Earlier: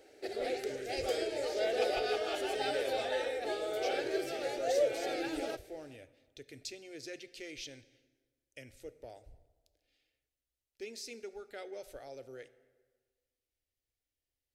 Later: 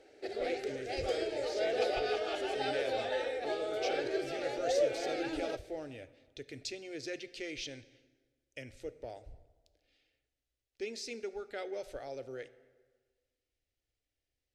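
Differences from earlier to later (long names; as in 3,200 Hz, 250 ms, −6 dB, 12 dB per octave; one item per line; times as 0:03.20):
speech +5.0 dB
master: add high-frequency loss of the air 58 metres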